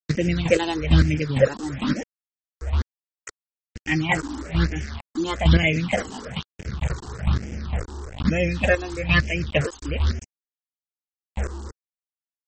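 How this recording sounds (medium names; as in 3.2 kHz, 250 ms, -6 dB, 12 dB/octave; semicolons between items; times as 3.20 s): a quantiser's noise floor 6-bit, dither none; chopped level 2.2 Hz, depth 65%, duty 25%; phasing stages 6, 1.1 Hz, lowest notch 150–1100 Hz; MP3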